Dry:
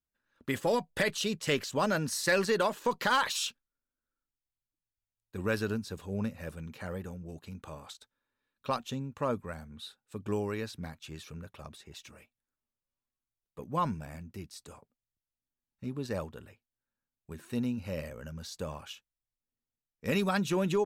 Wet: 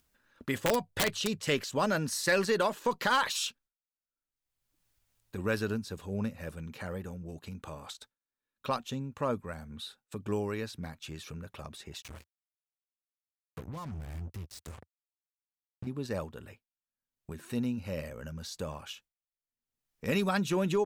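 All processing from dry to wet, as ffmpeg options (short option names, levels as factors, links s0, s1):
-filter_complex "[0:a]asettb=1/sr,asplit=3[s0][s1][s2];[s0]atrim=end=0.584[s3];[s1]atrim=start=0.58:end=1.43,asetpts=PTS-STARTPTS,afade=t=in:d=0.004:c=qsin,afade=t=out:st=0.846:d=0.004:c=qsin,acrossover=split=7200[s4][s5];[s5]acompressor=threshold=0.00316:ratio=4:attack=1:release=60[s6];[s4][s6]amix=inputs=2:normalize=0,equalizer=f=100:t=o:w=0.34:g=14,aeval=exprs='(mod(10*val(0)+1,2)-1)/10':c=same[s7];[s2]atrim=start=1.426[s8];[s3][s7]acrossfade=d=0.004:c1=hsin:c2=qsin[s9];[s9][s8]acrossfade=d=0.004:c1=qsin:c2=hsin,asettb=1/sr,asplit=3[s10][s11][s12];[s10]atrim=end=12.024[s13];[s11]atrim=start=12.02:end=15.87,asetpts=PTS-STARTPTS,afade=t=in:d=0.004:c=qsin,afade=t=out:st=3.846:d=0.004:c=qsin,acompressor=threshold=0.00398:ratio=2.5:attack=3.2:release=140:knee=1:detection=peak,acrusher=bits=7:mix=0:aa=0.5,equalizer=f=83:t=o:w=1.4:g=13.5[s14];[s12]atrim=start=15.866[s15];[s13][s14]acrossfade=d=0.004:c1=hsin:c2=qsin[s16];[s16][s15]acrossfade=d=0.004:c1=qsin:c2=hsin,agate=range=0.0224:threshold=0.002:ratio=3:detection=peak,acompressor=mode=upward:threshold=0.0141:ratio=2.5"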